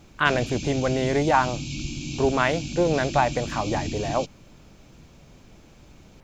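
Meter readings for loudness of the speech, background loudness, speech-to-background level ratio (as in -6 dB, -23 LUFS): -24.5 LUFS, -33.0 LUFS, 8.5 dB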